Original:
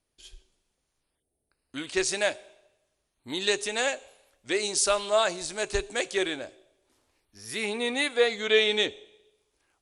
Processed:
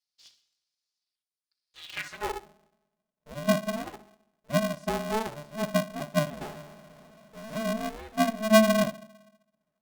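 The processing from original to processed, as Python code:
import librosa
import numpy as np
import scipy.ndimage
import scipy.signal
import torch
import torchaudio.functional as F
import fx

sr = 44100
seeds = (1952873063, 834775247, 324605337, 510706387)

p1 = x + 0.97 * np.pad(x, (int(4.7 * sr / 1000.0), 0))[:len(x)]
p2 = p1 + fx.echo_thinned(p1, sr, ms=62, feedback_pct=36, hz=160.0, wet_db=-13.5, dry=0)
p3 = fx.filter_sweep_bandpass(p2, sr, from_hz=4800.0, to_hz=410.0, start_s=1.78, end_s=2.47, q=4.3)
p4 = fx.power_curve(p3, sr, exponent=0.5, at=(6.41, 7.63))
y = p4 * np.sign(np.sin(2.0 * np.pi * 220.0 * np.arange(len(p4)) / sr))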